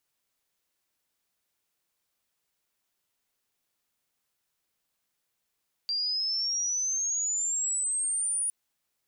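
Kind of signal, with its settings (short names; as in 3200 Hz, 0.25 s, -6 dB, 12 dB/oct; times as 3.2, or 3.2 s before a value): chirp logarithmic 4700 Hz -> 9700 Hz -26.5 dBFS -> -26 dBFS 2.61 s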